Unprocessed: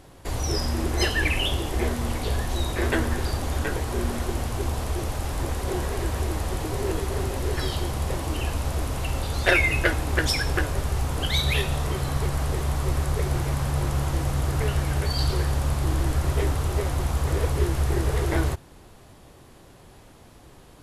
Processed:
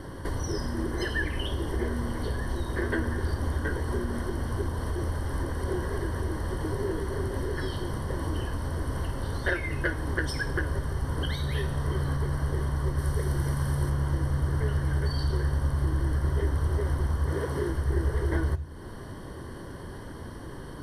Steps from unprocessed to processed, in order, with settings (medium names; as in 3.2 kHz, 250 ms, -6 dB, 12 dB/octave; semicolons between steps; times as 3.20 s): 12.98–13.90 s: treble shelf 4.5 kHz +8.5 dB; 17.29–17.70 s: high-pass 140 Hz 12 dB/octave; compression 2.5:1, threshold -43 dBFS, peak gain reduction 18 dB; reverberation RT60 0.45 s, pre-delay 3 ms, DRR 17.5 dB